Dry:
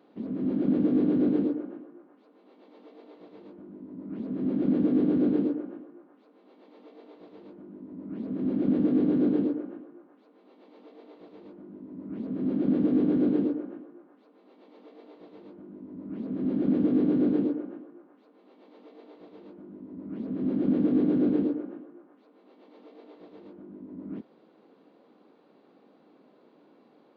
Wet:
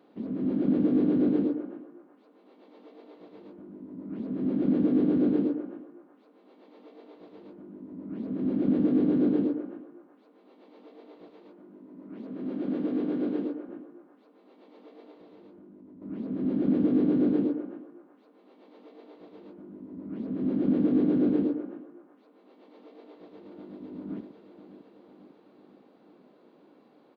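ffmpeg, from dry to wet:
-filter_complex "[0:a]asettb=1/sr,asplit=3[s0][s1][s2];[s0]atrim=end=11.304[s3];[s1]atrim=start=11.3:end=13.69,asetpts=PTS-STARTPTS,afade=t=in:d=0.004:c=qsin,afade=t=out:st=2.386:d=0.004:c=qsin,highpass=f=440:p=1[s4];[s2]atrim=start=13.686[s5];[s3][s4]acrossfade=d=0.004:c1=hsin:c2=qsin[s6];[s6][s5]acrossfade=d=0.004:c1=qsin:c2=hsin,asettb=1/sr,asplit=3[s7][s8][s9];[s7]atrim=end=15.114[s10];[s8]atrim=start=15.11:end=16.02,asetpts=PTS-STARTPTS,afade=t=in:d=0.004:c=qsin,afade=t=out:st=0.906:d=0.004:c=qsin,acompressor=threshold=0.00398:ratio=4:attack=3.2:release=140:knee=1:detection=peak[s11];[s9]atrim=start=16.016[s12];[s10][s11]acrossfade=d=0.004:c1=hsin:c2=qsin[s13];[s13][s12]acrossfade=d=0.004:c1=qsin:c2=hsin,asplit=2[s14][s15];[s15]afade=t=in:st=23.01:d=0.01,afade=t=out:st=23.81:d=0.01,aecho=0:1:500|1000|1500|2000|2500|3000|3500|4000|4500|5000|5500:0.794328|0.516313|0.335604|0.218142|0.141793|0.0921652|0.0599074|0.0389398|0.0253109|0.0164521|0.0106938[s16];[s14][s16]amix=inputs=2:normalize=0"

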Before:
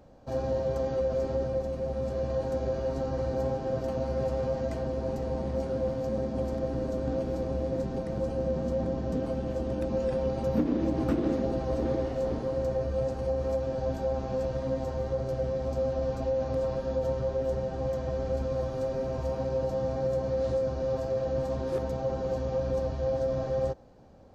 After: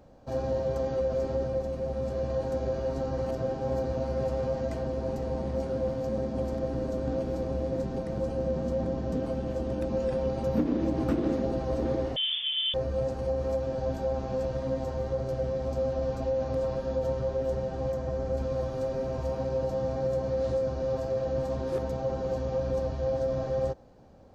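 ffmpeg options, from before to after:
-filter_complex "[0:a]asettb=1/sr,asplit=3[s0][s1][s2];[s0]atrim=end=12.164[s3];[s1]atrim=start=12.16:end=12.74,asetpts=PTS-STARTPTS,afade=t=in:d=0.004:c=qsin,afade=t=out:st=0.576:d=0.004:c=qsin,lowpass=f=3100:t=q:w=0.5098,lowpass=f=3100:t=q:w=0.6013,lowpass=f=3100:t=q:w=0.9,lowpass=f=3100:t=q:w=2.563,afreqshift=-3600[s4];[s2]atrim=start=12.736[s5];[s3][s4]acrossfade=d=0.004:c1=hsin:c2=qsin[s6];[s6][s5]acrossfade=d=0.004:c1=qsin:c2=hsin,asettb=1/sr,asplit=3[s7][s8][s9];[s7]atrim=end=17.924[s10];[s8]atrim=start=17.92:end=18.38,asetpts=PTS-STARTPTS,afade=t=in:d=0.004:c=qsin,afade=t=out:st=0.456:d=0.004:c=qsin,equalizer=f=3300:t=o:w=1.5:g=-4.5[s11];[s9]atrim=start=18.376[s12];[s10][s11]acrossfade=d=0.004:c1=hsin:c2=qsin[s13];[s13][s12]acrossfade=d=0.004:c1=qsin:c2=hsin,asplit=3[s14][s15][s16];[s14]atrim=end=3.262[s17];[s15]atrim=start=3.258:end=3.932,asetpts=PTS-STARTPTS,areverse[s18];[s16]atrim=start=3.928[s19];[s17][s18]acrossfade=d=0.004:c1=hsin:c2=hsin[s20];[s20][s19]acrossfade=d=0.004:c1=hsin:c2=hsin"

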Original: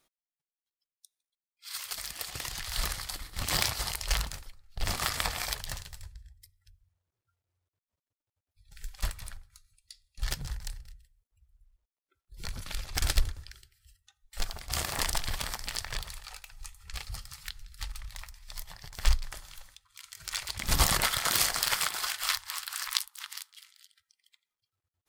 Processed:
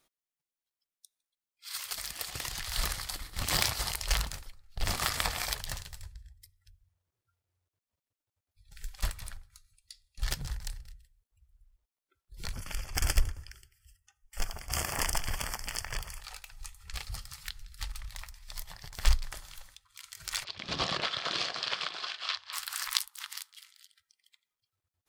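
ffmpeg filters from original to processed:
-filter_complex "[0:a]asettb=1/sr,asplit=3[s0][s1][s2];[s0]atrim=end=12.534[s3];[s1]atrim=start=12.53:end=16.21,asetpts=PTS-STARTPTS,afade=t=in:d=0.004:c=qsin,afade=t=out:st=3.676:d=0.004:c=qsin,asuperstop=centerf=3900:order=4:qfactor=2.8[s4];[s2]atrim=start=16.206[s5];[s3][s4]acrossfade=d=0.004:c1=hsin:c2=qsin[s6];[s6][s5]acrossfade=d=0.004:c1=qsin:c2=hsin,asettb=1/sr,asplit=3[s7][s8][s9];[s7]atrim=end=20.444[s10];[s8]atrim=start=20.44:end=22.53,asetpts=PTS-STARTPTS,afade=t=in:d=0.004:c=qsin,afade=t=out:st=2.086:d=0.004:c=qsin,highpass=190,equalizer=f=240:t=q:w=4:g=-4,equalizer=f=880:t=q:w=4:g=-8,equalizer=f=1400:t=q:w=4:g=-5,equalizer=f=2000:t=q:w=4:g=-8,lowpass=f=4400:w=0.5412,lowpass=f=4400:w=1.3066[s11];[s9]atrim=start=22.526[s12];[s10][s11]acrossfade=d=0.004:c1=hsin:c2=qsin[s13];[s13][s12]acrossfade=d=0.004:c1=qsin:c2=hsin"

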